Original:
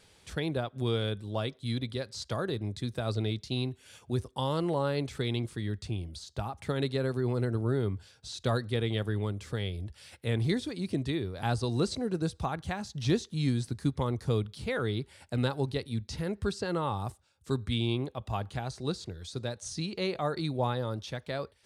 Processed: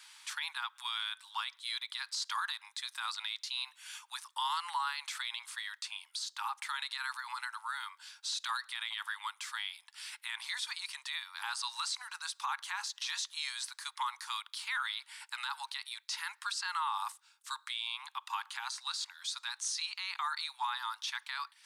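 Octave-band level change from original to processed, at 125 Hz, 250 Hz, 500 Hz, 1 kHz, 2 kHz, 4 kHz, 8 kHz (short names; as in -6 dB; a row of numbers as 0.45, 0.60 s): under -40 dB, under -40 dB, under -40 dB, +0.5 dB, +3.5 dB, +3.5 dB, +5.5 dB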